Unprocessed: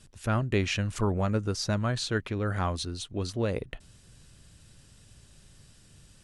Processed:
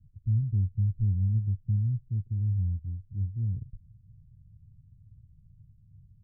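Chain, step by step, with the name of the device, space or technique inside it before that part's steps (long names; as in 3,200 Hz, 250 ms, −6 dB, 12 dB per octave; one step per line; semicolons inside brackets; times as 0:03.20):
the neighbour's flat through the wall (low-pass filter 170 Hz 24 dB per octave; parametric band 100 Hz +8 dB 0.86 octaves)
level −2.5 dB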